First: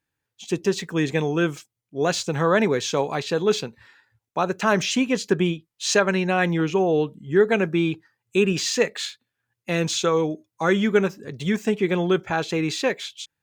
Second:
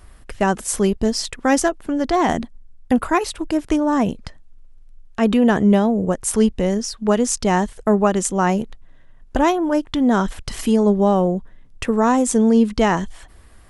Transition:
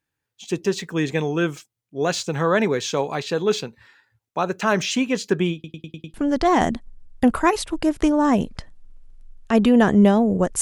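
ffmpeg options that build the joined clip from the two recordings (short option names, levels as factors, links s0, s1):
-filter_complex "[0:a]apad=whole_dur=10.61,atrim=end=10.61,asplit=6[s0][s1][s2][s3][s4][s5];[s0]atrim=end=5.642[s6];[s1]atrim=start=5.538:end=5.642[s7];[s2]atrim=start=5.538:end=5.642[s8];[s3]atrim=start=5.538:end=5.642[s9];[s4]atrim=start=5.538:end=5.642[s10];[s5]atrim=start=5.538:end=5.642[s11];[1:a]atrim=start=1.818:end=6.29[s12];[s6][s7]acrossfade=d=0.004:c1=hsin:c2=hsin[s13];[s13][s8]acrossfade=d=0.004:c1=hsin:c2=hsin[s14];[s14][s9]acrossfade=d=0.004:c1=hsin:c2=hsin[s15];[s15][s10]acrossfade=d=0.004:c1=hsin:c2=hsin[s16];[s16][s11]acrossfade=d=0.004:c1=hsin:c2=hsin[s17];[s17][s12]acrossfade=d=0.004:c1=hsin:c2=hsin"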